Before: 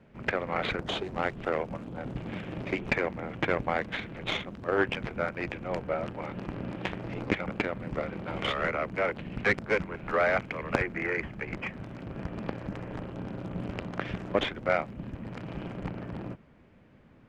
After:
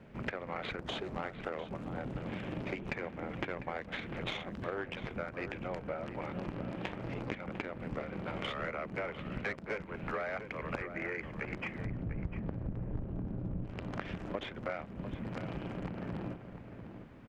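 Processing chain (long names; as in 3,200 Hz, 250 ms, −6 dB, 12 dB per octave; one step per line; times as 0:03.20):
0:11.85–0:13.65: spectral tilt −4.5 dB per octave
downward compressor 6 to 1, threshold −39 dBFS, peak gain reduction 21.5 dB
slap from a distant wall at 120 metres, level −9 dB
level +3 dB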